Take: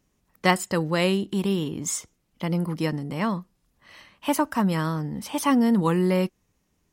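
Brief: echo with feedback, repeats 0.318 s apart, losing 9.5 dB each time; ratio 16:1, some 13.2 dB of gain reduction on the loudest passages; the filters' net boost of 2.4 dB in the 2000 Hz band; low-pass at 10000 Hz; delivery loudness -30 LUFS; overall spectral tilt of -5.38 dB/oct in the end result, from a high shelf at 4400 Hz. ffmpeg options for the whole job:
-af "lowpass=10k,equalizer=f=2k:t=o:g=4,highshelf=f=4.4k:g=-7,acompressor=threshold=-27dB:ratio=16,aecho=1:1:318|636|954|1272:0.335|0.111|0.0365|0.012,volume=2.5dB"

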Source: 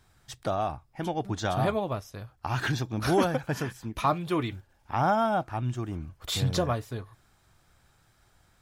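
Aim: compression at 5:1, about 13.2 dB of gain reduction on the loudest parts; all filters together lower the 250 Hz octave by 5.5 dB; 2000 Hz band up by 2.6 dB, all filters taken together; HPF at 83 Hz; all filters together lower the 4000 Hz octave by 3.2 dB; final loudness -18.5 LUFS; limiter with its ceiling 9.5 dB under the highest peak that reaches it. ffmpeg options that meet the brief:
-af "highpass=83,equalizer=f=250:t=o:g=-8.5,equalizer=f=2k:t=o:g=5,equalizer=f=4k:t=o:g=-5.5,acompressor=threshold=-35dB:ratio=5,volume=22.5dB,alimiter=limit=-7dB:level=0:latency=1"

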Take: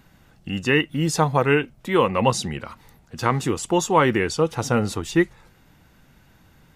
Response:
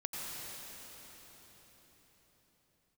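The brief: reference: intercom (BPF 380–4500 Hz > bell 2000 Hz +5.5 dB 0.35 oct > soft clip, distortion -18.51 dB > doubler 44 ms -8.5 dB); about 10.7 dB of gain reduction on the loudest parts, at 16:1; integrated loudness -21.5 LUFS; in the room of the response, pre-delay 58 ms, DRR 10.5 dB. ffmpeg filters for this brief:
-filter_complex "[0:a]acompressor=threshold=-23dB:ratio=16,asplit=2[a][b];[1:a]atrim=start_sample=2205,adelay=58[c];[b][c]afir=irnorm=-1:irlink=0,volume=-13dB[d];[a][d]amix=inputs=2:normalize=0,highpass=380,lowpass=4.5k,equalizer=f=2k:t=o:w=0.35:g=5.5,asoftclip=threshold=-18dB,asplit=2[e][f];[f]adelay=44,volume=-8.5dB[g];[e][g]amix=inputs=2:normalize=0,volume=10dB"

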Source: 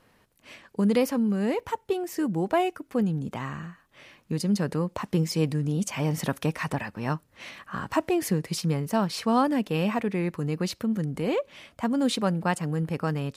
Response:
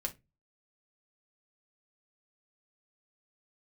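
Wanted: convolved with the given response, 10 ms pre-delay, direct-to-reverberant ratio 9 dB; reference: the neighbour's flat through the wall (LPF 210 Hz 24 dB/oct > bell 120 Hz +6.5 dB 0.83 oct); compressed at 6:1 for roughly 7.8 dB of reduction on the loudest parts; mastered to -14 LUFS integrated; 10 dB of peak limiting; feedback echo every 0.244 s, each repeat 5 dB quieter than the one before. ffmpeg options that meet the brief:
-filter_complex "[0:a]acompressor=threshold=-27dB:ratio=6,alimiter=level_in=2dB:limit=-24dB:level=0:latency=1,volume=-2dB,aecho=1:1:244|488|732|976|1220|1464|1708:0.562|0.315|0.176|0.0988|0.0553|0.031|0.0173,asplit=2[a][b];[1:a]atrim=start_sample=2205,adelay=10[c];[b][c]afir=irnorm=-1:irlink=0,volume=-10dB[d];[a][d]amix=inputs=2:normalize=0,lowpass=f=210:w=0.5412,lowpass=f=210:w=1.3066,equalizer=f=120:t=o:w=0.83:g=6.5,volume=21dB"

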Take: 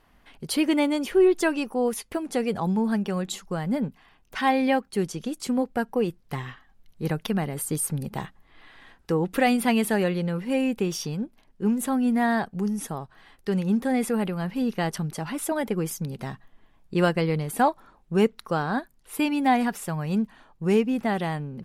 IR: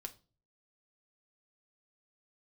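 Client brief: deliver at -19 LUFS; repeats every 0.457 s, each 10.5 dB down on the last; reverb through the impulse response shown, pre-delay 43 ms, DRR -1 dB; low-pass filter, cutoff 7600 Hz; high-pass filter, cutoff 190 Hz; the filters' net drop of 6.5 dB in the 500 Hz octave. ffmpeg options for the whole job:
-filter_complex "[0:a]highpass=190,lowpass=7.6k,equalizer=f=500:t=o:g=-8.5,aecho=1:1:457|914|1371:0.299|0.0896|0.0269,asplit=2[a][b];[1:a]atrim=start_sample=2205,adelay=43[c];[b][c]afir=irnorm=-1:irlink=0,volume=4.5dB[d];[a][d]amix=inputs=2:normalize=0,volume=6.5dB"

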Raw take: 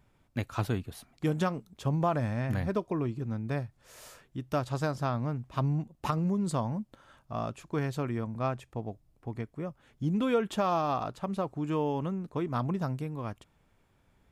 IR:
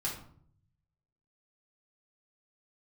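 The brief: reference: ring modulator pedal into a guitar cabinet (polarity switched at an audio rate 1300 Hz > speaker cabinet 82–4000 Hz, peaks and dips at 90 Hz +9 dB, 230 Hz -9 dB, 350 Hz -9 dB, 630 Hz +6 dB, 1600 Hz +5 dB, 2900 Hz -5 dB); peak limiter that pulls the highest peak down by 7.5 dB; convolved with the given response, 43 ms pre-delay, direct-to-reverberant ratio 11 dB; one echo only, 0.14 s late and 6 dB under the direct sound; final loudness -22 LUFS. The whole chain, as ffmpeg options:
-filter_complex "[0:a]alimiter=limit=-23.5dB:level=0:latency=1,aecho=1:1:140:0.501,asplit=2[a][b];[1:a]atrim=start_sample=2205,adelay=43[c];[b][c]afir=irnorm=-1:irlink=0,volume=-14.5dB[d];[a][d]amix=inputs=2:normalize=0,aeval=exprs='val(0)*sgn(sin(2*PI*1300*n/s))':c=same,highpass=82,equalizer=f=90:t=q:w=4:g=9,equalizer=f=230:t=q:w=4:g=-9,equalizer=f=350:t=q:w=4:g=-9,equalizer=f=630:t=q:w=4:g=6,equalizer=f=1.6k:t=q:w=4:g=5,equalizer=f=2.9k:t=q:w=4:g=-5,lowpass=f=4k:w=0.5412,lowpass=f=4k:w=1.3066,volume=7.5dB"

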